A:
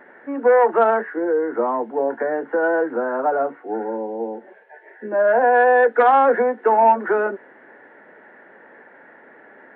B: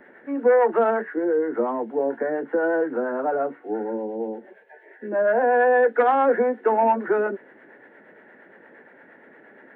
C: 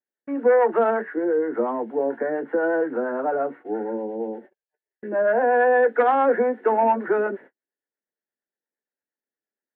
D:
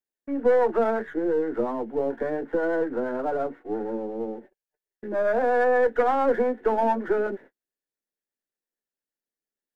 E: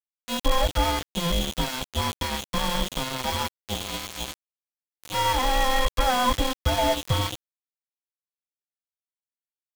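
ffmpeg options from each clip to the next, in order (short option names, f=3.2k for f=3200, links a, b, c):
-filter_complex "[0:a]acrossover=split=2600[a][b];[b]acompressor=threshold=-49dB:ratio=4:attack=1:release=60[c];[a][c]amix=inputs=2:normalize=0,equalizer=f=1k:w=0.73:g=-7.5,acrossover=split=550[d][e];[d]aeval=exprs='val(0)*(1-0.5/2+0.5/2*cos(2*PI*8.6*n/s))':c=same[f];[e]aeval=exprs='val(0)*(1-0.5/2-0.5/2*cos(2*PI*8.6*n/s))':c=same[g];[f][g]amix=inputs=2:normalize=0,volume=3.5dB"
-af "agate=range=-48dB:threshold=-41dB:ratio=16:detection=peak"
-af "aeval=exprs='if(lt(val(0),0),0.708*val(0),val(0))':c=same,equalizer=f=1.3k:t=o:w=2.9:g=-4.5,volume=1dB"
-af "afftfilt=real='real(if(between(b,1,1008),(2*floor((b-1)/24)+1)*24-b,b),0)':imag='imag(if(between(b,1,1008),(2*floor((b-1)/24)+1)*24-b,b),0)*if(between(b,1,1008),-1,1)':win_size=2048:overlap=0.75,aeval=exprs='val(0)+0.0282*sin(2*PI*3300*n/s)':c=same,aeval=exprs='val(0)*gte(abs(val(0)),0.0668)':c=same"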